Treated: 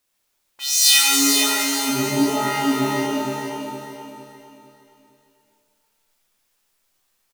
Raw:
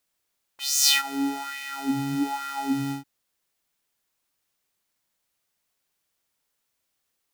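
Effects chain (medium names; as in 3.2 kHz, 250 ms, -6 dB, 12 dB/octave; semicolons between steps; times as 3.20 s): feedback delay 458 ms, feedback 38%, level -6 dB; pitch-shifted reverb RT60 1.3 s, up +7 st, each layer -2 dB, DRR -1 dB; trim +2.5 dB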